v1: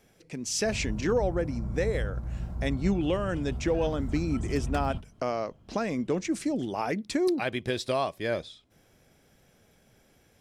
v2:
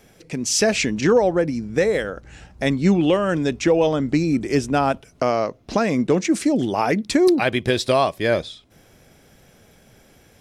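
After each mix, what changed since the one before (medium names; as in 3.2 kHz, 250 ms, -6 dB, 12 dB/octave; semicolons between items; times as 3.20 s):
speech +10.0 dB; background -11.5 dB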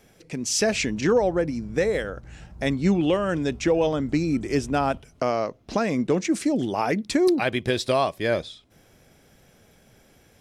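speech -4.0 dB; reverb: on, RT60 0.90 s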